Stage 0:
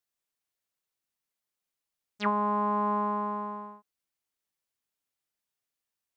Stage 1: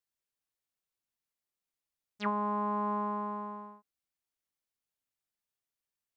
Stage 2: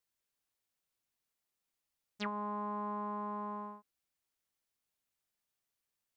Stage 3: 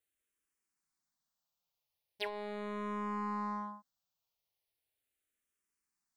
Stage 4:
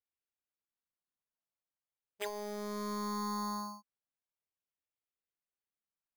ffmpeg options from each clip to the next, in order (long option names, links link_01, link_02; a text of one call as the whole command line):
ffmpeg -i in.wav -af "lowshelf=frequency=140:gain=5,volume=-5dB" out.wav
ffmpeg -i in.wav -af "acompressor=threshold=-39dB:ratio=6,volume=3dB" out.wav
ffmpeg -i in.wav -filter_complex "[0:a]asplit=2[link_01][link_02];[link_02]acrusher=bits=5:mix=0:aa=0.5,volume=-8dB[link_03];[link_01][link_03]amix=inputs=2:normalize=0,asplit=2[link_04][link_05];[link_05]afreqshift=-0.39[link_06];[link_04][link_06]amix=inputs=2:normalize=1,volume=2dB" out.wav
ffmpeg -i in.wav -af "highshelf=frequency=3400:gain=-9,afftdn=noise_reduction=12:noise_floor=-52,acrusher=samples=8:mix=1:aa=0.000001,volume=1dB" out.wav